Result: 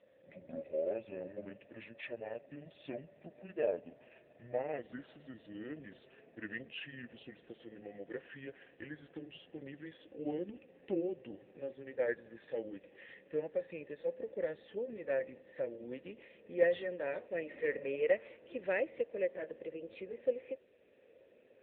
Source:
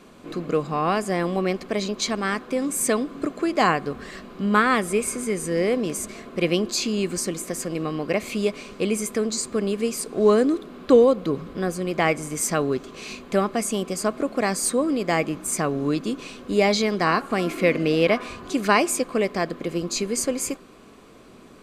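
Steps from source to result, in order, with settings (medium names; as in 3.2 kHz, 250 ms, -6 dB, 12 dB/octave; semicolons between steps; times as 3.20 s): pitch bend over the whole clip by -11.5 st ending unshifted; vowel filter e; trim -2.5 dB; AMR-NB 7.95 kbps 8 kHz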